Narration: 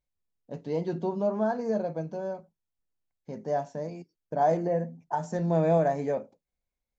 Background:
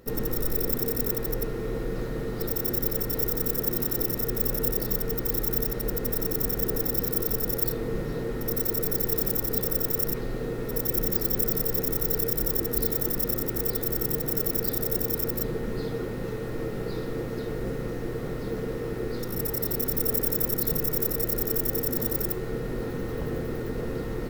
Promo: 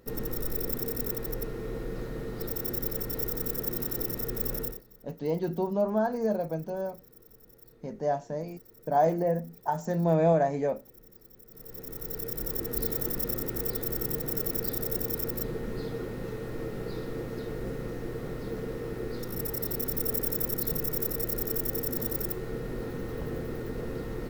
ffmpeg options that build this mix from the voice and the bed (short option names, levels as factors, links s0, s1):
-filter_complex "[0:a]adelay=4550,volume=1.06[s0];[1:a]volume=8.91,afade=t=out:st=4.58:d=0.24:silence=0.0707946,afade=t=in:st=11.48:d=1.41:silence=0.0630957[s1];[s0][s1]amix=inputs=2:normalize=0"